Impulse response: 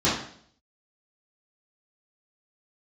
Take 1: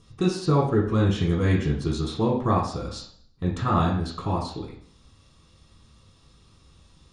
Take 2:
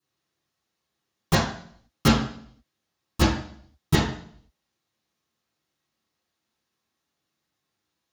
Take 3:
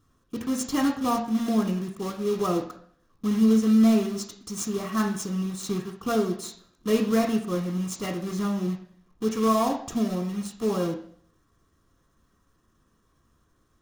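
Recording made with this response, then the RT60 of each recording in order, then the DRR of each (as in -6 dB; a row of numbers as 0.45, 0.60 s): 2; 0.60, 0.60, 0.60 s; -3.0, -11.0, 2.5 dB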